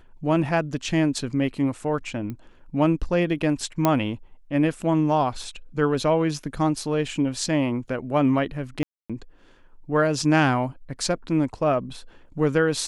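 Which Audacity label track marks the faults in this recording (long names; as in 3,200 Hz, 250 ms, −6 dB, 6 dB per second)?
2.300000	2.300000	click −22 dBFS
3.850000	3.850000	click −6 dBFS
8.830000	9.100000	drop-out 266 ms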